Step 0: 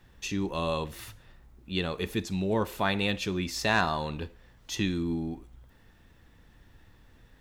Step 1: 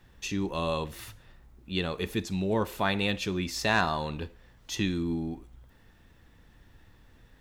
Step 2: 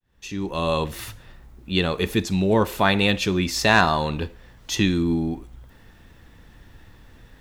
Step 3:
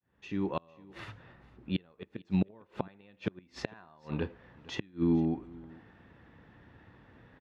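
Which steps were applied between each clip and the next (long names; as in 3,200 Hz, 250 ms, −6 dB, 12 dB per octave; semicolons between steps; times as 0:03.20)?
no processing that can be heard
fade in at the beginning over 0.84 s; level +8.5 dB
gate with flip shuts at −12 dBFS, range −33 dB; band-pass filter 110–2,100 Hz; single-tap delay 453 ms −22.5 dB; level −3.5 dB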